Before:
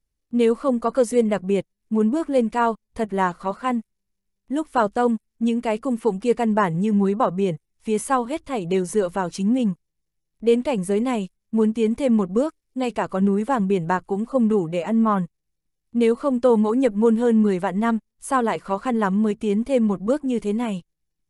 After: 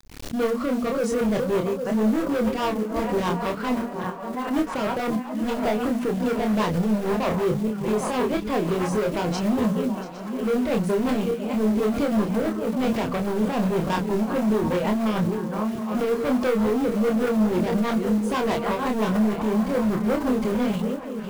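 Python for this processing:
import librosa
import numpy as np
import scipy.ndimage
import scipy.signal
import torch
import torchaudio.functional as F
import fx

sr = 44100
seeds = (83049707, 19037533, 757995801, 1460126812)

p1 = fx.reverse_delay_fb(x, sr, ms=404, feedback_pct=58, wet_db=-11.5)
p2 = scipy.signal.sosfilt(scipy.signal.butter(2, 5500.0, 'lowpass', fs=sr, output='sos'), p1)
p3 = fx.peak_eq(p2, sr, hz=120.0, db=2.5, octaves=0.85)
p4 = fx.hum_notches(p3, sr, base_hz=60, count=5)
p5 = fx.over_compress(p4, sr, threshold_db=-22.0, ratio=-0.5)
p6 = p4 + (p5 * 10.0 ** (-2.0 / 20.0))
p7 = np.clip(p6, -10.0 ** (-19.0 / 20.0), 10.0 ** (-19.0 / 20.0))
p8 = fx.rotary(p7, sr, hz=6.3)
p9 = fx.quant_companded(p8, sr, bits=6)
p10 = fx.doubler(p9, sr, ms=28.0, db=-3.5)
p11 = p10 + fx.echo_stepped(p10, sr, ms=724, hz=810.0, octaves=0.7, feedback_pct=70, wet_db=-9, dry=0)
p12 = fx.pre_swell(p11, sr, db_per_s=84.0)
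y = p12 * 10.0 ** (-1.5 / 20.0)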